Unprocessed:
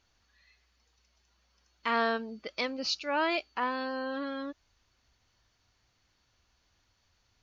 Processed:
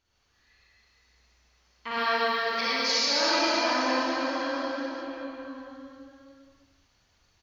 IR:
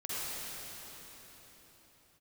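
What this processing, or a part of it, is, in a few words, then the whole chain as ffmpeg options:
cave: -filter_complex "[0:a]asettb=1/sr,asplit=3[a][b][c];[a]atrim=end=1.914[d];[b]atrim=start=1.91:end=2.92,asetpts=PTS-STARTPTS,afade=t=in:d=0.004:c=qsin,afade=t=out:st=1.006:d=0.004:c=qsin,aemphasis=mode=production:type=riaa[e];[c]atrim=start=2.916[f];[d][e]acrossfade=d=0.004:c1=hsin:c2=qsin[g];[g][f]acrossfade=d=0.004:c1=qsin:c2=hsin,aecho=1:1:207:0.335[h];[1:a]atrim=start_sample=2205[i];[h][i]afir=irnorm=-1:irlink=0"

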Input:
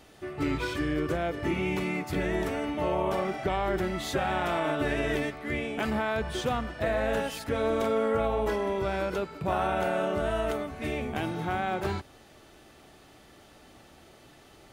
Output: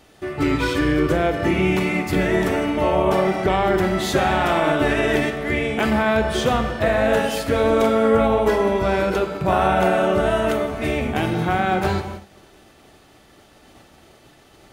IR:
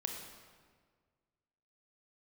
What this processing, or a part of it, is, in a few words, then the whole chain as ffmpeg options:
keyed gated reverb: -filter_complex "[0:a]asplit=3[a][b][c];[1:a]atrim=start_sample=2205[d];[b][d]afir=irnorm=-1:irlink=0[e];[c]apad=whole_len=649457[f];[e][f]sidechaingate=range=-33dB:threshold=-51dB:ratio=16:detection=peak,volume=3.5dB[g];[a][g]amix=inputs=2:normalize=0,volume=2dB"

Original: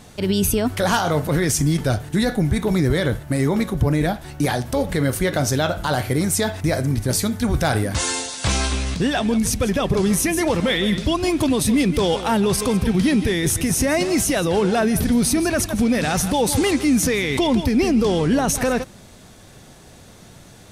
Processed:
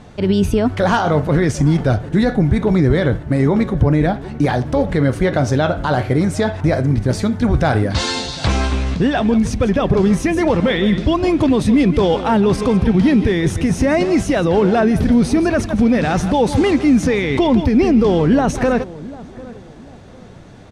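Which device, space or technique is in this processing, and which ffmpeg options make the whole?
through cloth: -filter_complex "[0:a]asettb=1/sr,asplit=3[a][b][c];[a]atrim=end=7.904[d];[b]atrim=start=7.9:end=8.46,asetpts=PTS-STARTPTS,afade=t=in:d=0.004:c=qsin,afade=t=out:st=0.556:d=0.004:c=qsin,equalizer=f=4.2k:t=o:w=0.86:g=11.5[e];[c]atrim=start=8.456[f];[d][e]acrossfade=d=0.004:c1=hsin:c2=qsin[g];[g][f]acrossfade=d=0.004:c1=qsin:c2=hsin,lowpass=7.4k,highshelf=f=3.2k:g=-13.5,asplit=2[h][i];[i]adelay=747,lowpass=f=1k:p=1,volume=-18dB,asplit=2[j][k];[k]adelay=747,lowpass=f=1k:p=1,volume=0.35,asplit=2[l][m];[m]adelay=747,lowpass=f=1k:p=1,volume=0.35[n];[h][j][l][n]amix=inputs=4:normalize=0,volume=5dB"

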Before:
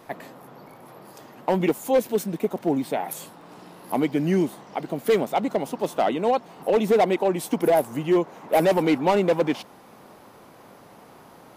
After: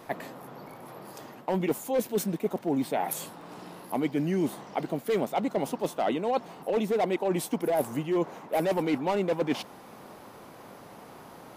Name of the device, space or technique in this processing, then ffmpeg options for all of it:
compression on the reversed sound: -af "areverse,acompressor=threshold=-25dB:ratio=6,areverse,volume=1dB"

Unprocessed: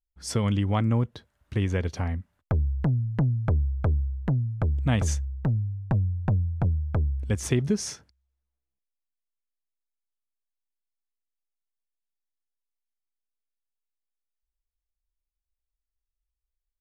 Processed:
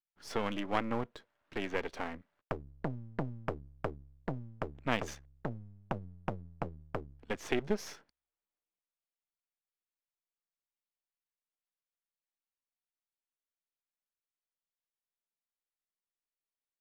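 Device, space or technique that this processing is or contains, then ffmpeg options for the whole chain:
crystal radio: -af "highpass=330,lowpass=3.3k,aeval=exprs='if(lt(val(0),0),0.251*val(0),val(0))':c=same,volume=1dB"

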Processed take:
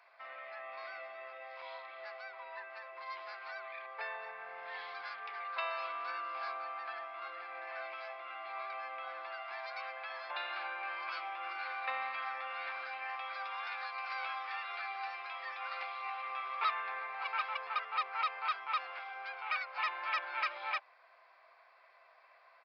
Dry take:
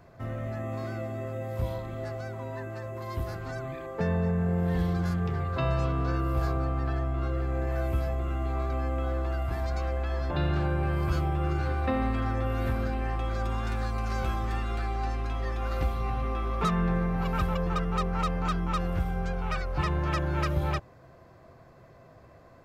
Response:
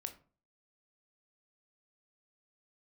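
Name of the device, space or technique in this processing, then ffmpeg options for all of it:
musical greeting card: -af "aresample=11025,aresample=44100,highpass=f=820:w=0.5412,highpass=f=820:w=1.3066,equalizer=f=2.3k:t=o:w=0.3:g=9.5,volume=-2.5dB"

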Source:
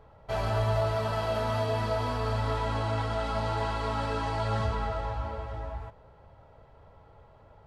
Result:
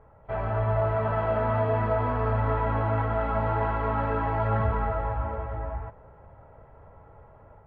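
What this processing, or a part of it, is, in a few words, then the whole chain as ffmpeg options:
action camera in a waterproof case: -af "lowpass=f=2.1k:w=0.5412,lowpass=f=2.1k:w=1.3066,dynaudnorm=f=540:g=3:m=4dB" -ar 22050 -c:a aac -b:a 96k

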